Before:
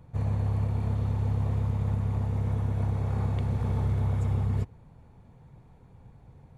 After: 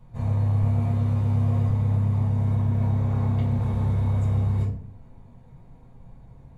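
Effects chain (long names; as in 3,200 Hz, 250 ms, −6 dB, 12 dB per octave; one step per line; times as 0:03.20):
0:00.61–0:01.69: double-tracking delay 13 ms −3 dB
convolution reverb RT60 0.55 s, pre-delay 4 ms, DRR −7 dB
0:02.55–0:03.62: linearly interpolated sample-rate reduction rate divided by 2×
level −8.5 dB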